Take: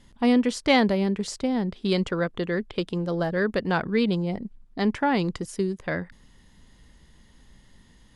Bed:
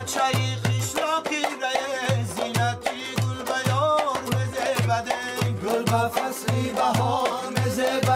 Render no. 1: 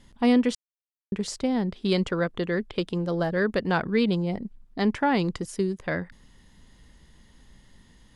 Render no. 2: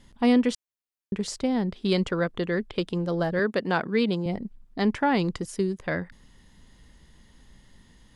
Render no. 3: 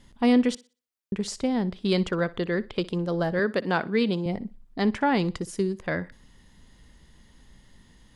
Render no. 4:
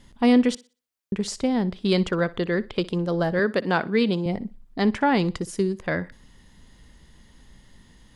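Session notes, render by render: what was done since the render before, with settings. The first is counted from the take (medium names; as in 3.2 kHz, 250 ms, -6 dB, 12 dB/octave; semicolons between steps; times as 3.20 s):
0.55–1.12 s: mute
3.39–4.26 s: high-pass 180 Hz
thinning echo 61 ms, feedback 28%, high-pass 160 Hz, level -19.5 dB
trim +2.5 dB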